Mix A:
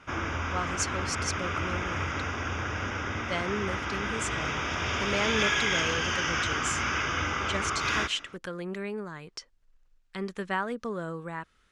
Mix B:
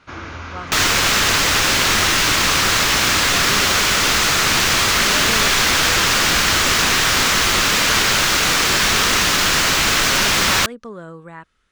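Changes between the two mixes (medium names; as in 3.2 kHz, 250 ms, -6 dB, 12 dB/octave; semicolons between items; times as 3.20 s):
first sound: remove Butterworth band-stop 4.2 kHz, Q 3.4; second sound: unmuted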